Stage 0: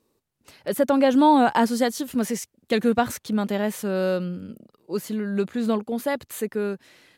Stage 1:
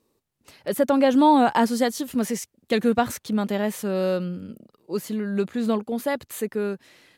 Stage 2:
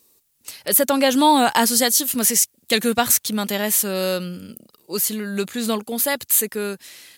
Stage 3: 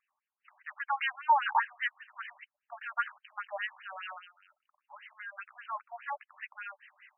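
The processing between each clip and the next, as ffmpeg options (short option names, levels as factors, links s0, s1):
-af "bandreject=f=1500:w=30"
-af "crystalizer=i=8:c=0,volume=0.891"
-af "asuperstop=centerf=660:order=4:qfactor=8,afftfilt=real='re*between(b*sr/1024,790*pow(2200/790,0.5+0.5*sin(2*PI*5*pts/sr))/1.41,790*pow(2200/790,0.5+0.5*sin(2*PI*5*pts/sr))*1.41)':imag='im*between(b*sr/1024,790*pow(2200/790,0.5+0.5*sin(2*PI*5*pts/sr))/1.41,790*pow(2200/790,0.5+0.5*sin(2*PI*5*pts/sr))*1.41)':win_size=1024:overlap=0.75,volume=0.562"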